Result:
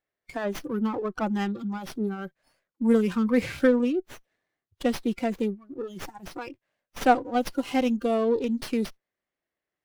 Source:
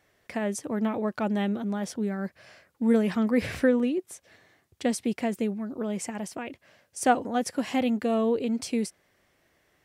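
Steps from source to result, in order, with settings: spectral noise reduction 23 dB; bell 81 Hz -6.5 dB 1.9 oct; running maximum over 5 samples; gain +2.5 dB

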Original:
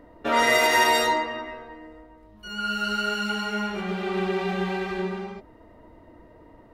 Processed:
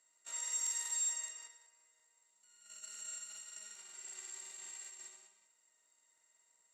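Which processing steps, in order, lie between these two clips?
per-bin compression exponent 0.4; gate -20 dBFS, range -22 dB; compressor 2.5:1, threshold -29 dBFS, peak gain reduction 10.5 dB; band-pass 7500 Hz, Q 19; flutter echo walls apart 10.6 m, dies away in 0.63 s; crackling interface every 0.19 s, samples 2048, repeat, from 0.43; gain +12 dB

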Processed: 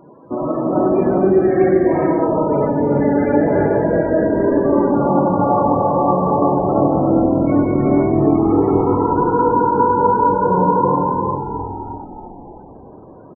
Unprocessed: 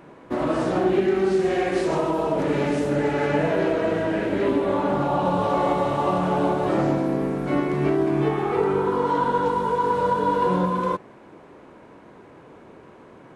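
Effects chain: frequency-shifting echo 0.323 s, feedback 57%, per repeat -42 Hz, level -7 dB; loudest bins only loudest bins 32; non-linear reverb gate 0.46 s rising, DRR 0 dB; gain +3 dB

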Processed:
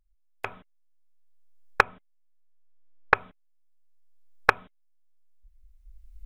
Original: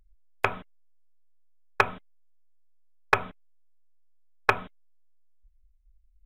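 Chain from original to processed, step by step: recorder AGC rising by 16 dB/s; 1.83–3.15 LPF 3100 Hz 12 dB/oct; gain -11 dB

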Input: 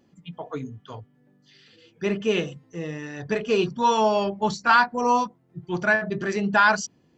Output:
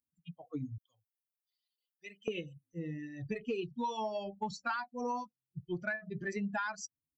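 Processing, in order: per-bin expansion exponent 2; 0.78–2.28 differentiator; compressor 12:1, threshold -34 dBFS, peak gain reduction 19.5 dB; soft clip -19 dBFS, distortion -36 dB; gain +1 dB

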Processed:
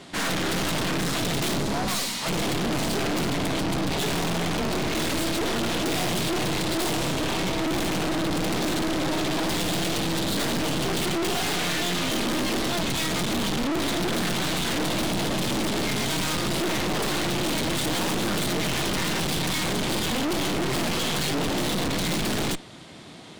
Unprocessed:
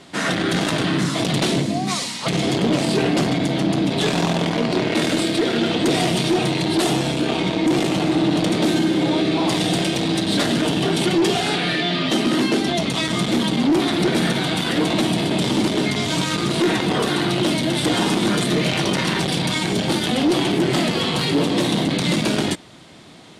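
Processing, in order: added harmonics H 4 -7 dB, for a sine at -11 dBFS; hard clip -24.5 dBFS, distortion -4 dB

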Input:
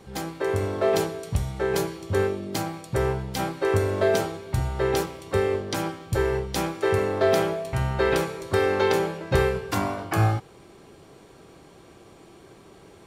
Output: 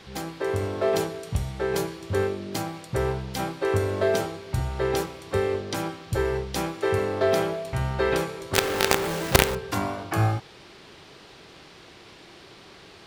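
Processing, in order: 8.54–9.55 companded quantiser 2-bit; band noise 470–4700 Hz -50 dBFS; gain -1.5 dB

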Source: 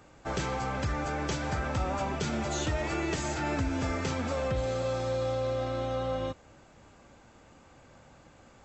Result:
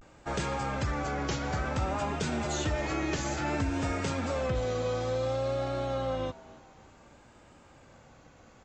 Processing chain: vibrato 0.57 Hz 83 cents; frequency-shifting echo 0.279 s, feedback 44%, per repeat +130 Hz, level -21.5 dB

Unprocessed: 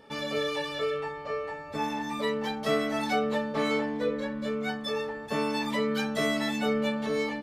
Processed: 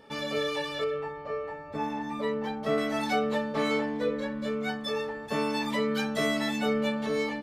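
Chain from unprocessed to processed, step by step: 0.84–2.78 high shelf 2500 Hz -11.5 dB

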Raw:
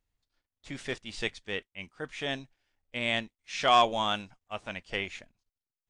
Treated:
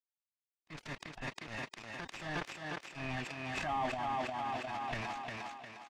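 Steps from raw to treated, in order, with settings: CVSD 16 kbps; comb 1.2 ms, depth 96%; crossover distortion -36 dBFS; formant-preserving pitch shift +2 st; air absorption 52 m; on a send: thinning echo 0.355 s, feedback 43%, high-pass 150 Hz, level -4 dB; on the sum: compressor 4:1, threshold -37 dBFS, peak gain reduction 16.5 dB; transient shaper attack -6 dB, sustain +12 dB; sustainer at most 74 dB/s; gain +1.5 dB

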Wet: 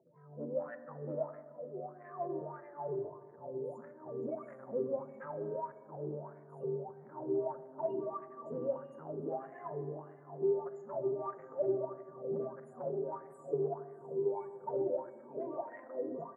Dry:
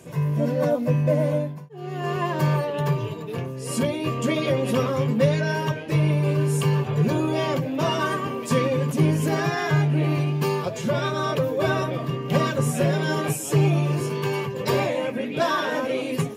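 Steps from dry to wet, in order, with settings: HPF 92 Hz 24 dB/oct; band shelf 2300 Hz -10 dB 2.6 oct; notches 60/120/180/240 Hz; comb 1 ms, depth 32%; in parallel at +1 dB: compressor, threshold -38 dBFS, peak gain reduction 22 dB; on the sum: loudest bins only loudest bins 16; diffused feedback echo 0.766 s, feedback 40%, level -11.5 dB; soft clip -16.5 dBFS, distortion -15 dB; wah 1.6 Hz 370–2000 Hz, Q 7.8; reverb RT60 1.6 s, pre-delay 4 ms, DRR 11.5 dB

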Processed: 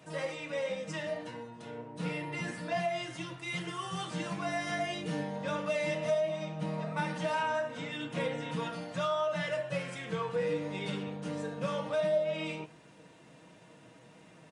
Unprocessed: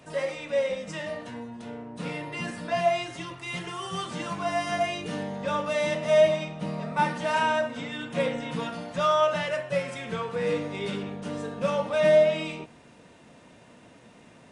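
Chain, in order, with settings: HPF 57 Hz; comb 6.3 ms, depth 50%; compressor 5:1, threshold -24 dBFS, peak gain reduction 11.5 dB; flange 1.4 Hz, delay 4.7 ms, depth 3.9 ms, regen +80%

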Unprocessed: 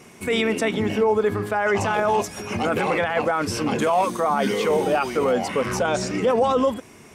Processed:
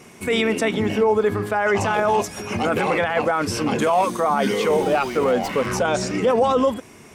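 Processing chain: 4.82–5.67 running maximum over 3 samples; gain +1.5 dB

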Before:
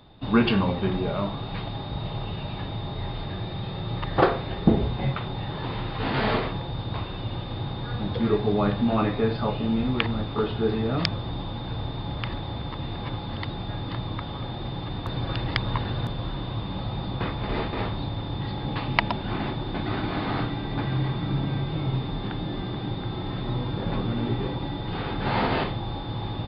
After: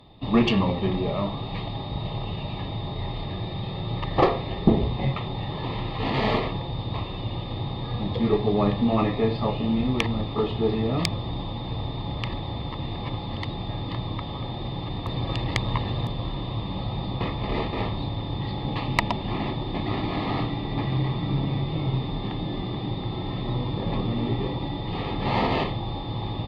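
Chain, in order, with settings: tube stage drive 10 dB, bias 0.55; Butterworth band-stop 1500 Hz, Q 3.4; gain +3.5 dB

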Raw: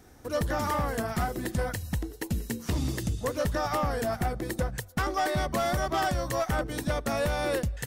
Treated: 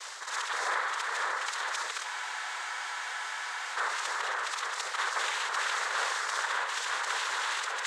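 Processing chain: short-time reversal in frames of 0.137 s; steep high-pass 950 Hz 48 dB/oct; reverse; upward compressor, threshold -39 dBFS; reverse; noise vocoder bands 6; on a send: echo with dull and thin repeats by turns 0.574 s, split 2300 Hz, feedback 71%, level -5.5 dB; on the sum: spectral freeze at 2.07, 1.70 s; fast leveller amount 50%; gain +4 dB

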